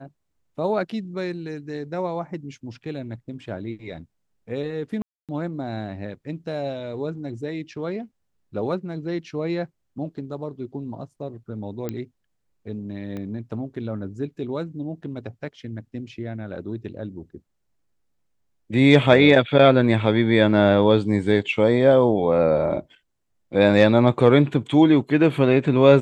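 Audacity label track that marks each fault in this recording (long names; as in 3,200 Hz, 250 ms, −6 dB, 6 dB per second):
5.020000	5.290000	drop-out 267 ms
11.890000	11.890000	click −15 dBFS
13.170000	13.170000	click −22 dBFS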